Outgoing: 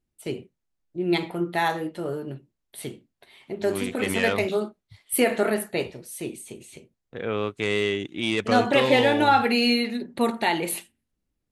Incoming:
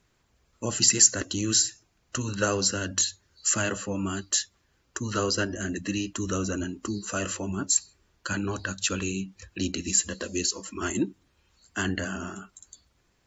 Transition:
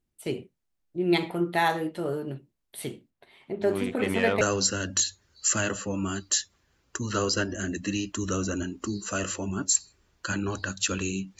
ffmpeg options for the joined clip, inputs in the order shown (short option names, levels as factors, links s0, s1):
-filter_complex "[0:a]asettb=1/sr,asplit=3[s0][s1][s2];[s0]atrim=end=3.104[s3];[s1]atrim=start=3.1:end=4.41,asetpts=PTS-STARTPTS,afade=t=in:d=0.004:c=qsin,afade=t=out:st=1.306:d=0.004:c=qsin,highshelf=f=3000:g=-10[s4];[s2]atrim=start=4.406[s5];[s3][s4]acrossfade=d=0.004:c1=hsin:c2=qsin[s6];[s6][s5]acrossfade=d=0.004:c1=qsin:c2=hsin,apad=whole_dur=11.39,atrim=end=11.39,atrim=end=4.412[s7];[1:a]atrim=start=2.418:end=9.4[s8];[s7][s8]acrossfade=d=0.004:c1=hsin:c2=hsin"